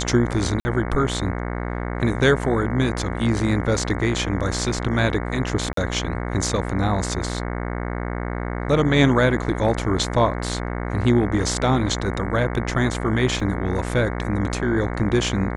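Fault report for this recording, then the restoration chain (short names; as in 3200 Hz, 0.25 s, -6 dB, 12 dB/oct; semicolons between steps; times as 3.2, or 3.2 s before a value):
buzz 60 Hz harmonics 37 -27 dBFS
0.6–0.65 gap 50 ms
5.73–5.77 gap 43 ms
13.4 gap 3.1 ms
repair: de-hum 60 Hz, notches 37; interpolate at 0.6, 50 ms; interpolate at 5.73, 43 ms; interpolate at 13.4, 3.1 ms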